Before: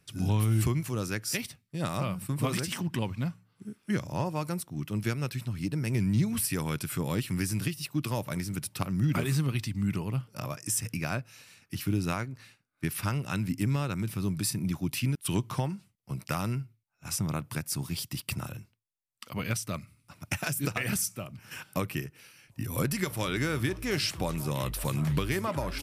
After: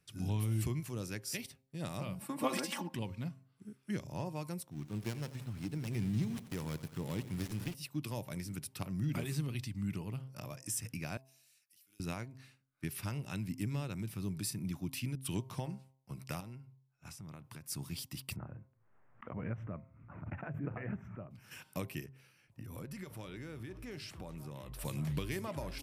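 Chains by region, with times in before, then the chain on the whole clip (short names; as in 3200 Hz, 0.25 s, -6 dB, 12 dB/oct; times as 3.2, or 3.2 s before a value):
2.2–2.94 HPF 170 Hz 24 dB/oct + bell 900 Hz +11.5 dB 1.9 oct + comb 3.6 ms, depth 70%
4.71–7.75 switching dead time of 0.2 ms + lo-fi delay 89 ms, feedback 55%, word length 8-bit, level -14 dB
11.17–12 differentiator + compressor 8:1, threshold -55 dBFS
16.4–17.64 compressor 10:1, threshold -36 dBFS + high shelf 5200 Hz -5 dB
18.36–21.31 inverse Chebyshev low-pass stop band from 4200 Hz, stop band 50 dB + backwards sustainer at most 58 dB/s
22.06–24.79 high shelf 2600 Hz -8 dB + compressor 3:1, threshold -35 dBFS
whole clip: de-hum 132.4 Hz, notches 8; dynamic EQ 1300 Hz, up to -6 dB, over -49 dBFS, Q 1.8; gain -8 dB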